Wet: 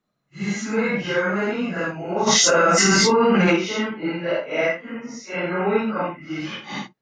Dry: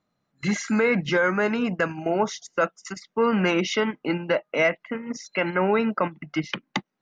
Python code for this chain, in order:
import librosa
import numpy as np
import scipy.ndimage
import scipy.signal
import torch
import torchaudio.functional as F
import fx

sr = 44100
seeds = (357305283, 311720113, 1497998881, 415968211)

y = fx.phase_scramble(x, sr, seeds[0], window_ms=200)
y = fx.env_flatten(y, sr, amount_pct=100, at=(2.26, 3.55), fade=0.02)